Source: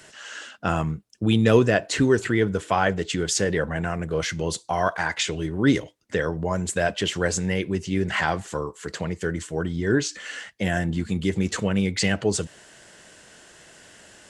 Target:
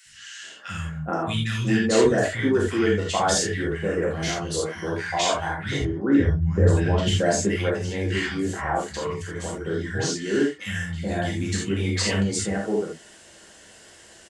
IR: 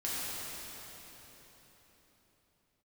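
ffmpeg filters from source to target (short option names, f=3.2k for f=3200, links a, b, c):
-filter_complex "[0:a]asettb=1/sr,asplit=3[a][b][c];[a]atrim=end=5.764[d];[b]atrim=start=5.76:end=7.06,asetpts=PTS-STARTPTS,afade=t=in:d=0.004:c=qsin,afade=t=out:st=1.296:d=0.004:c=qsin,aemphasis=mode=reproduction:type=riaa[e];[c]atrim=start=7.056[f];[d][e]acrossfade=d=0.004:c1=hsin:c2=qsin[g];[g][f]acrossfade=d=0.004:c1=qsin:c2=hsin,acrossover=split=170|1600[h][i][j];[h]adelay=50[k];[i]adelay=430[l];[k][l][j]amix=inputs=3:normalize=0[m];[1:a]atrim=start_sample=2205,atrim=end_sample=3969[n];[m][n]afir=irnorm=-1:irlink=0"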